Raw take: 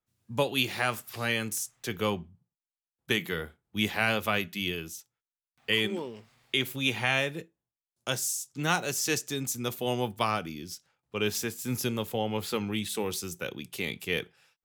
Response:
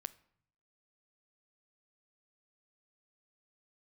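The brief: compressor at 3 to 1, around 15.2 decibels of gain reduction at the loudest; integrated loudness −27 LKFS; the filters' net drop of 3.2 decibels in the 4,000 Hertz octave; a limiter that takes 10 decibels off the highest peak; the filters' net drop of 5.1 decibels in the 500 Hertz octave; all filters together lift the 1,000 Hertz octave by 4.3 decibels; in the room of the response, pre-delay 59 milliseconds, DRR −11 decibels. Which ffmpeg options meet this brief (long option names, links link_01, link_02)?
-filter_complex "[0:a]equalizer=frequency=500:width_type=o:gain=-8.5,equalizer=frequency=1000:width_type=o:gain=8.5,equalizer=frequency=4000:width_type=o:gain=-5,acompressor=threshold=-41dB:ratio=3,alimiter=level_in=8.5dB:limit=-24dB:level=0:latency=1,volume=-8.5dB,asplit=2[link_01][link_02];[1:a]atrim=start_sample=2205,adelay=59[link_03];[link_02][link_03]afir=irnorm=-1:irlink=0,volume=14.5dB[link_04];[link_01][link_04]amix=inputs=2:normalize=0,volume=6dB"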